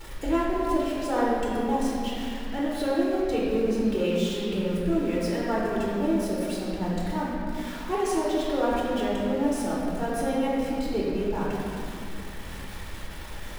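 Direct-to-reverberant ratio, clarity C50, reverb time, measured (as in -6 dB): -6.5 dB, -2.5 dB, 2.7 s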